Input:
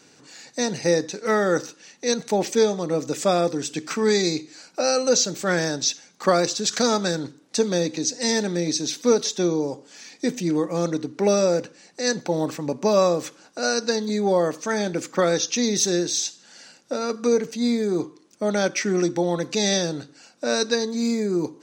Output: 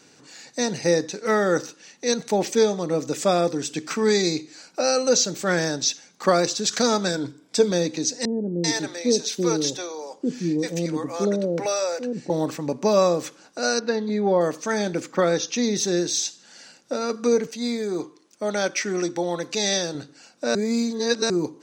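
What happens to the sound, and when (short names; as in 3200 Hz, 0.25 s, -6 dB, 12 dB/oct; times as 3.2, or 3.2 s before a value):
7.08–7.71 ripple EQ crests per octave 1.7, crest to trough 8 dB
8.25–12.3 bands offset in time lows, highs 0.39 s, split 530 Hz
13.79–14.41 LPF 2800 Hz
15–15.97 high shelf 4400 Hz -6.5 dB
17.47–19.95 low shelf 270 Hz -9.5 dB
20.55–21.3 reverse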